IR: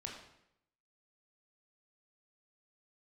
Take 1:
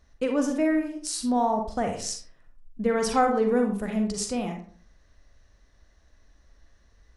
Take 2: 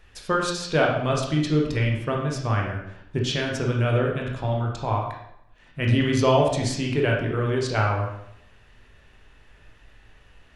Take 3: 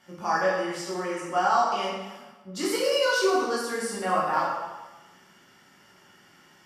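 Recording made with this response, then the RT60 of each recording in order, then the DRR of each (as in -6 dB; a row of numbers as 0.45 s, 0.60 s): 2; 0.50 s, 0.80 s, 1.1 s; 3.0 dB, -1.0 dB, -6.5 dB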